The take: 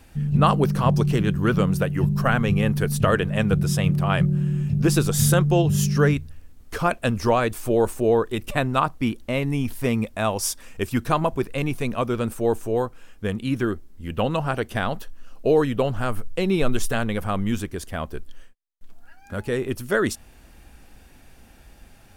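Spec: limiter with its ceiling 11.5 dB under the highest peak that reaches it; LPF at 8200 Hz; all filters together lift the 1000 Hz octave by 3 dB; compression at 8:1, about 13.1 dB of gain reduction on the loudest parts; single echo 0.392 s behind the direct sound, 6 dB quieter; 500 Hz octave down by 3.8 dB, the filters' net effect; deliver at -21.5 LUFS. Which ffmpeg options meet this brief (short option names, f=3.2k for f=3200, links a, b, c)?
-af "lowpass=8.2k,equalizer=f=500:t=o:g=-6,equalizer=f=1k:t=o:g=5.5,acompressor=threshold=-27dB:ratio=8,alimiter=level_in=2dB:limit=-24dB:level=0:latency=1,volume=-2dB,aecho=1:1:392:0.501,volume=13.5dB"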